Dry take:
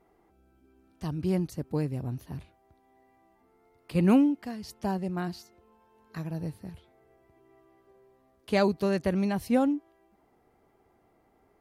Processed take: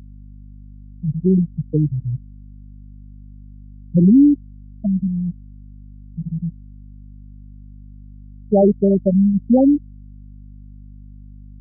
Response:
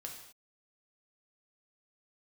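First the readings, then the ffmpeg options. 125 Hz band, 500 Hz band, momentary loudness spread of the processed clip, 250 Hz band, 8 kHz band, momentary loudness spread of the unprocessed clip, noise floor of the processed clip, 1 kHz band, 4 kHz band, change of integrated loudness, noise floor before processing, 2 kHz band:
+12.0 dB, +9.5 dB, 15 LU, +11.5 dB, n/a, 17 LU, -39 dBFS, +2.0 dB, under -35 dB, +11.0 dB, -67 dBFS, under -35 dB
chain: -af "aeval=exprs='0.299*(cos(1*acos(clip(val(0)/0.299,-1,1)))-cos(1*PI/2))+0.0668*(cos(5*acos(clip(val(0)/0.299,-1,1)))-cos(5*PI/2))':c=same,highpass=f=62:w=0.5412,highpass=f=62:w=1.3066,afftfilt=real='re*gte(hypot(re,im),0.501)':imag='im*gte(hypot(re,im),0.501)':win_size=1024:overlap=0.75,aeval=exprs='val(0)+0.00501*(sin(2*PI*50*n/s)+sin(2*PI*2*50*n/s)/2+sin(2*PI*3*50*n/s)/3+sin(2*PI*4*50*n/s)/4+sin(2*PI*5*50*n/s)/5)':c=same,volume=8dB"

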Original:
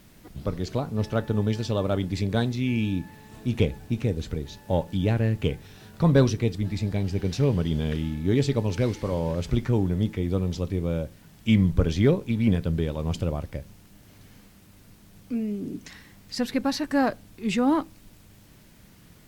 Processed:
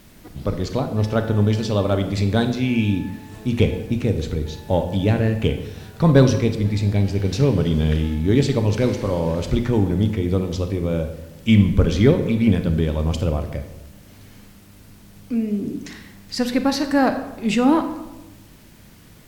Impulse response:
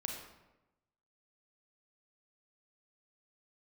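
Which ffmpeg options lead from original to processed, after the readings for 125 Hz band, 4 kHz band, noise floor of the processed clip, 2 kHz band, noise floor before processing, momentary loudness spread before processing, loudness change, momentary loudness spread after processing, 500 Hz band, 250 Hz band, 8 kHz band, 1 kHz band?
+5.5 dB, +6.0 dB, -47 dBFS, +6.0 dB, -53 dBFS, 12 LU, +5.5 dB, 12 LU, +6.0 dB, +6.0 dB, +5.5 dB, +6.0 dB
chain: -filter_complex "[0:a]bandreject=f=60:t=h:w=6,bandreject=f=120:t=h:w=6,bandreject=f=180:t=h:w=6,asplit=2[a][b];[1:a]atrim=start_sample=2205[c];[b][c]afir=irnorm=-1:irlink=0,volume=0.5dB[d];[a][d]amix=inputs=2:normalize=0"

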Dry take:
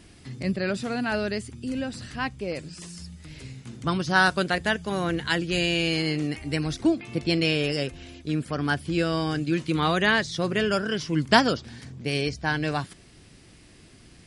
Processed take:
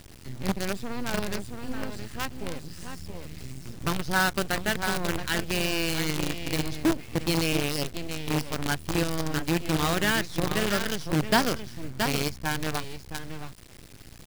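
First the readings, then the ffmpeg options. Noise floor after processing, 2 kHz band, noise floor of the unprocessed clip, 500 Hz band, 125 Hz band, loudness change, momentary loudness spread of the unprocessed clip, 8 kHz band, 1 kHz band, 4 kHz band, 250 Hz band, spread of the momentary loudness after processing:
-46 dBFS, -3.5 dB, -52 dBFS, -3.5 dB, -2.0 dB, -2.5 dB, 15 LU, +7.0 dB, -3.0 dB, -2.0 dB, -3.0 dB, 15 LU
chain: -filter_complex "[0:a]aecho=1:1:674:0.447,asplit=2[a][b];[b]acompressor=threshold=-40dB:ratio=5,volume=3dB[c];[a][c]amix=inputs=2:normalize=0,acrusher=bits=4:dc=4:mix=0:aa=0.000001,lowshelf=f=160:g=7.5,volume=-6dB"

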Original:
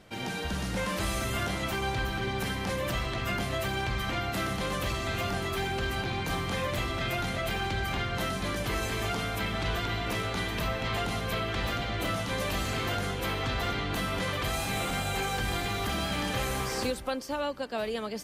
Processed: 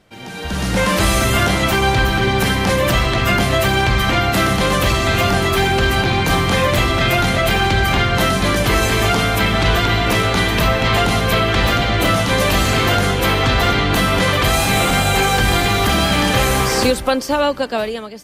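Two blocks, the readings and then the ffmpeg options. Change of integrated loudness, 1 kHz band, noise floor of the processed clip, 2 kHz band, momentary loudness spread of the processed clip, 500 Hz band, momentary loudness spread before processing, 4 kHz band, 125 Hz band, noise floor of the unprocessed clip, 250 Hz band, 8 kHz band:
+15.5 dB, +15.5 dB, -27 dBFS, +15.5 dB, 2 LU, +15.5 dB, 1 LU, +15.5 dB, +15.5 dB, -35 dBFS, +15.5 dB, +15.5 dB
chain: -af "dynaudnorm=f=160:g=7:m=16dB"

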